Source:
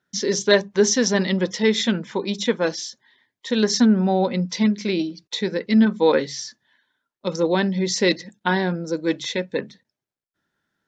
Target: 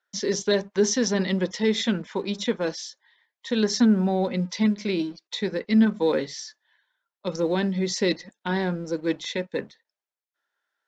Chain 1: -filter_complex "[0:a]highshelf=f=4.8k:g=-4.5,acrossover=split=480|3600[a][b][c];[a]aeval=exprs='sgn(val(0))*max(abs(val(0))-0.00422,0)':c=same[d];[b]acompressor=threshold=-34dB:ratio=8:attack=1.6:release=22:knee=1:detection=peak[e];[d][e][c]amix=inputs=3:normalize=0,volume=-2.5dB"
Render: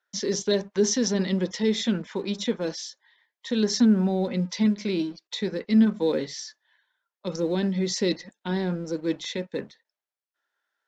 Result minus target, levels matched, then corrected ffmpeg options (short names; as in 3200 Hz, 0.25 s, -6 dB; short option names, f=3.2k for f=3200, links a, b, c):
compressor: peak gain reduction +8 dB
-filter_complex "[0:a]highshelf=f=4.8k:g=-4.5,acrossover=split=480|3600[a][b][c];[a]aeval=exprs='sgn(val(0))*max(abs(val(0))-0.00422,0)':c=same[d];[b]acompressor=threshold=-25dB:ratio=8:attack=1.6:release=22:knee=1:detection=peak[e];[d][e][c]amix=inputs=3:normalize=0,volume=-2.5dB"